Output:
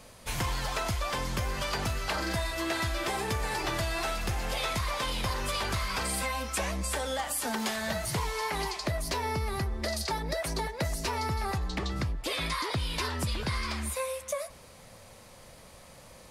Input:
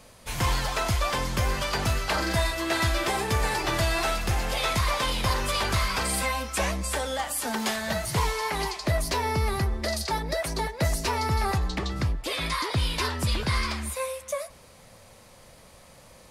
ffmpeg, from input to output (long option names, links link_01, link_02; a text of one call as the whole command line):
ffmpeg -i in.wav -af "acompressor=threshold=-28dB:ratio=6" out.wav